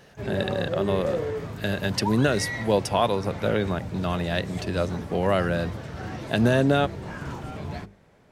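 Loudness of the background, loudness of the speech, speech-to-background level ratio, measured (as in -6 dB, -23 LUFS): -33.5 LUFS, -25.5 LUFS, 8.0 dB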